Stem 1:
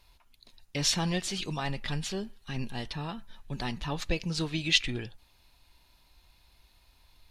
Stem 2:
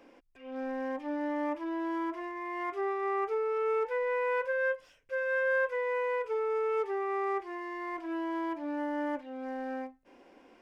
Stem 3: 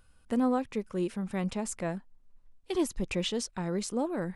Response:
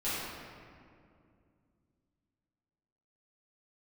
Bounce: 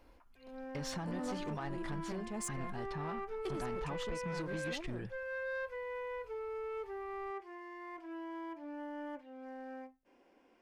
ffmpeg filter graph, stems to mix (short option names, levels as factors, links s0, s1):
-filter_complex "[0:a]highshelf=f=2000:t=q:w=1.5:g=-9.5,acompressor=threshold=0.0224:ratio=6,volume=0.794,asplit=2[s0][s1];[1:a]volume=0.335[s2];[2:a]adelay=750,volume=0.891[s3];[s1]apad=whole_len=229349[s4];[s3][s4]sidechaincompress=threshold=0.00316:ratio=8:attack=16:release=196[s5];[s0][s2][s5]amix=inputs=3:normalize=0,asoftclip=type=tanh:threshold=0.0237,bandreject=f=3800:w=27"